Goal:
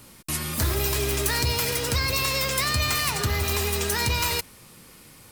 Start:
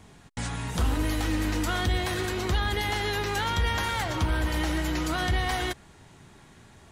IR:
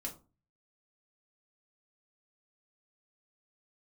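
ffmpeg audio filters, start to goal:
-af "crystalizer=i=3.5:c=0,asetrate=57330,aresample=44100"

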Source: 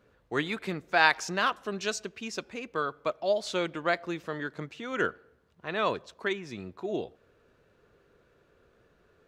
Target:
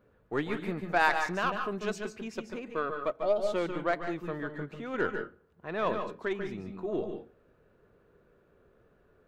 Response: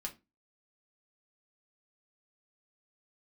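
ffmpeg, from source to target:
-filter_complex "[0:a]equalizer=frequency=5500:width=0.42:gain=-12,aeval=exprs='0.299*(cos(1*acos(clip(val(0)/0.299,-1,1)))-cos(1*PI/2))+0.0119*(cos(8*acos(clip(val(0)/0.299,-1,1)))-cos(8*PI/2))':channel_layout=same,asplit=2[link_01][link_02];[1:a]atrim=start_sample=2205,adelay=143[link_03];[link_02][link_03]afir=irnorm=-1:irlink=0,volume=-4.5dB[link_04];[link_01][link_04]amix=inputs=2:normalize=0"

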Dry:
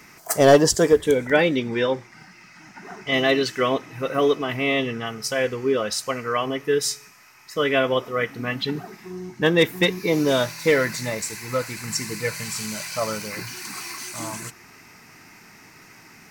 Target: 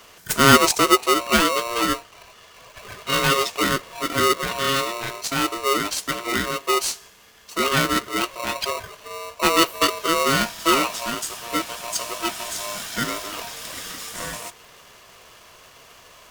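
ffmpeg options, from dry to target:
ffmpeg -i in.wav -af "aeval=exprs='val(0)*sgn(sin(2*PI*820*n/s))':channel_layout=same" out.wav

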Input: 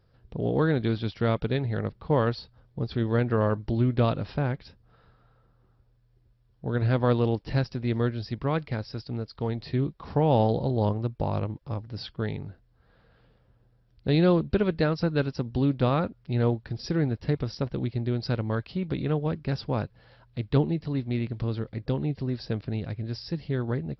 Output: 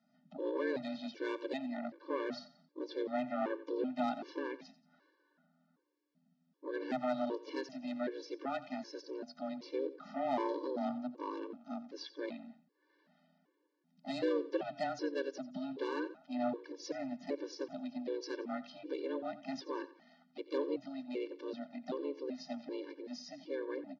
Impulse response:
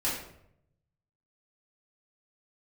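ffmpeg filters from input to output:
-filter_complex "[0:a]lowshelf=frequency=120:gain=-8,aresample=16000,asoftclip=type=tanh:threshold=-19dB,aresample=44100,afreqshift=130,asplit=2[link_01][link_02];[link_02]asetrate=52444,aresample=44100,atempo=0.840896,volume=-9dB[link_03];[link_01][link_03]amix=inputs=2:normalize=0,asplit=2[link_04][link_05];[link_05]aecho=0:1:89|178|267:0.158|0.0555|0.0194[link_06];[link_04][link_06]amix=inputs=2:normalize=0,afftfilt=real='re*gt(sin(2*PI*1.3*pts/sr)*(1-2*mod(floor(b*sr/1024/300),2)),0)':imag='im*gt(sin(2*PI*1.3*pts/sr)*(1-2*mod(floor(b*sr/1024/300),2)),0)':win_size=1024:overlap=0.75,volume=-6dB"

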